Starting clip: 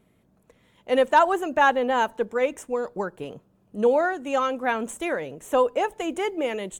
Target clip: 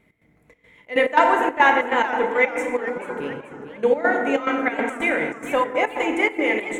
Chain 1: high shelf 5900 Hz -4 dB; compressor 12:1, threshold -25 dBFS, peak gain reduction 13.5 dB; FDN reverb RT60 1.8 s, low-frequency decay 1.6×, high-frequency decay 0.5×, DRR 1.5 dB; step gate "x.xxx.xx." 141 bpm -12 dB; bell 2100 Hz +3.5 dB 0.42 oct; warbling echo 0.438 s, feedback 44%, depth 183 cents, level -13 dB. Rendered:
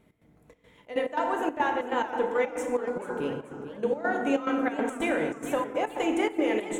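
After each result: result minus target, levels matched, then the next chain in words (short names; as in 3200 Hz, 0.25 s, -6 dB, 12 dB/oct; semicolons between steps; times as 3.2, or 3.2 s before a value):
compressor: peak gain reduction +13.5 dB; 2000 Hz band -4.5 dB
high shelf 5900 Hz -4 dB; FDN reverb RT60 1.8 s, low-frequency decay 1.6×, high-frequency decay 0.5×, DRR 1.5 dB; step gate "x.xxx.xx." 141 bpm -12 dB; bell 2100 Hz +3.5 dB 0.42 oct; warbling echo 0.438 s, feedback 44%, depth 183 cents, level -13 dB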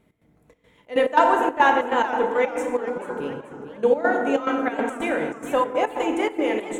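2000 Hz band -4.0 dB
high shelf 5900 Hz -4 dB; FDN reverb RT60 1.8 s, low-frequency decay 1.6×, high-frequency decay 0.5×, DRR 1.5 dB; step gate "x.xxx.xx." 141 bpm -12 dB; bell 2100 Hz +15.5 dB 0.42 oct; warbling echo 0.438 s, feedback 44%, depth 183 cents, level -13 dB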